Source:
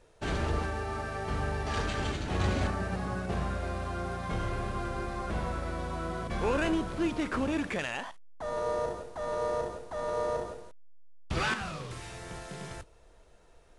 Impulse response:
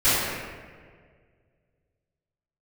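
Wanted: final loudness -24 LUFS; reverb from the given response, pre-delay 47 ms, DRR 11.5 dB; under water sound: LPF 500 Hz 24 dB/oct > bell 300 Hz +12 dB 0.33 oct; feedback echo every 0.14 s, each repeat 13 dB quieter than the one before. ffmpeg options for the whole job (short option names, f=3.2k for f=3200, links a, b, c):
-filter_complex "[0:a]aecho=1:1:140|280|420:0.224|0.0493|0.0108,asplit=2[a][b];[1:a]atrim=start_sample=2205,adelay=47[c];[b][c]afir=irnorm=-1:irlink=0,volume=-31dB[d];[a][d]amix=inputs=2:normalize=0,lowpass=f=500:w=0.5412,lowpass=f=500:w=1.3066,equalizer=f=300:t=o:w=0.33:g=12,volume=7dB"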